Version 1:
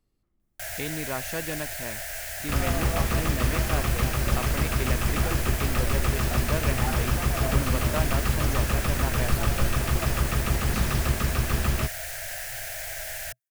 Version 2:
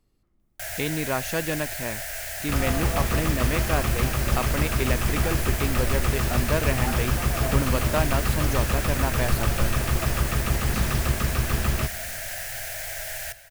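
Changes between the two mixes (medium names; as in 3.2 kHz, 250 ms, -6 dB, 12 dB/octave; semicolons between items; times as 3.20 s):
speech +5.5 dB; reverb: on, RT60 2.4 s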